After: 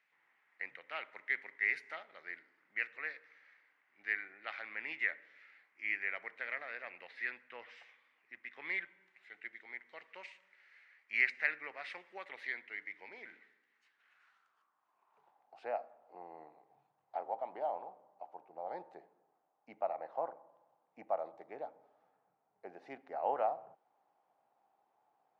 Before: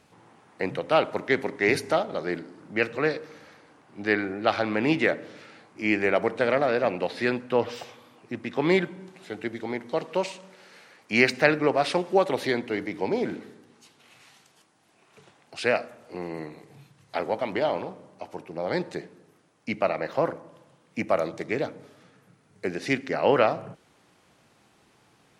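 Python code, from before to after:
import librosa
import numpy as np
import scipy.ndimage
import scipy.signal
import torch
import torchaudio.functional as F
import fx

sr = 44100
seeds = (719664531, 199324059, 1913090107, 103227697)

y = fx.filter_sweep_bandpass(x, sr, from_hz=2000.0, to_hz=780.0, start_s=13.68, end_s=15.47, q=4.7)
y = F.gain(torch.from_numpy(y), -5.0).numpy()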